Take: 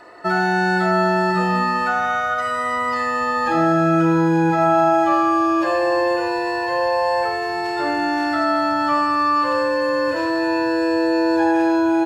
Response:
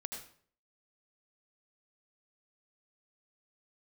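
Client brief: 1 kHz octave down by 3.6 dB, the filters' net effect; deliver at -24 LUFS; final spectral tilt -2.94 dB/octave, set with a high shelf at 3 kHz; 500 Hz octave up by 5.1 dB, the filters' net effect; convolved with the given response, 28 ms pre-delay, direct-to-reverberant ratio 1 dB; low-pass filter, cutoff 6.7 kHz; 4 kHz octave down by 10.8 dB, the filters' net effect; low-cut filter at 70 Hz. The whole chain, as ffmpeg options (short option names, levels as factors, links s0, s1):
-filter_complex "[0:a]highpass=70,lowpass=6700,equalizer=f=500:t=o:g=9,equalizer=f=1000:t=o:g=-7,highshelf=f=3000:g=-4,equalizer=f=4000:t=o:g=-8.5,asplit=2[s0][s1];[1:a]atrim=start_sample=2205,adelay=28[s2];[s1][s2]afir=irnorm=-1:irlink=0,volume=1[s3];[s0][s3]amix=inputs=2:normalize=0,volume=0.376"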